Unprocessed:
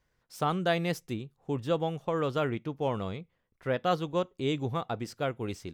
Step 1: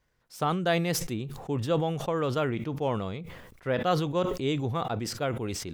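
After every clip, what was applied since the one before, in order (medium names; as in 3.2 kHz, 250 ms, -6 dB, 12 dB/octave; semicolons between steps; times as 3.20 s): decay stretcher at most 45 dB/s; trim +1 dB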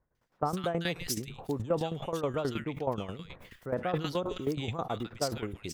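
bands offset in time lows, highs 150 ms, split 1.5 kHz; tremolo saw down 9.4 Hz, depth 75%; harmonic-percussive split harmonic -4 dB; trim +1.5 dB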